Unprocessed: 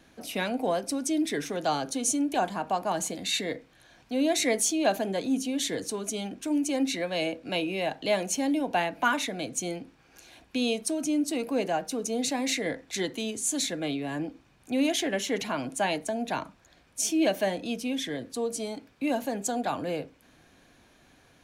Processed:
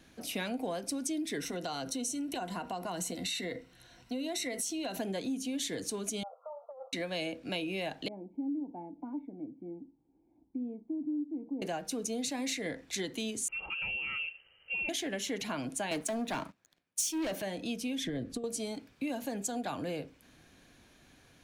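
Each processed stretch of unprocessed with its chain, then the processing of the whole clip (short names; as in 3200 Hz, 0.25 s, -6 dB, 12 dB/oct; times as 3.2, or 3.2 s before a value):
1.4–5 ripple EQ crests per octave 2, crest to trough 9 dB + compressor 3:1, threshold -30 dBFS
6.23–6.93 brick-wall FIR band-pass 470–1400 Hz + negative-ratio compressor -40 dBFS
8.08–11.62 vocal tract filter u + notch 1900 Hz, Q 9.2
13.48–14.89 notch comb 390 Hz + inverted band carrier 3000 Hz + compressor 2:1, threshold -31 dBFS
15.91–17.42 HPF 140 Hz + sample leveller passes 3 + three-band expander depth 70%
18.04–18.44 negative-ratio compressor -33 dBFS, ratio -0.5 + tilt -2.5 dB/oct + notch 930 Hz, Q 8.1
whole clip: bell 800 Hz -4.5 dB 2.2 oct; compressor, threshold -32 dBFS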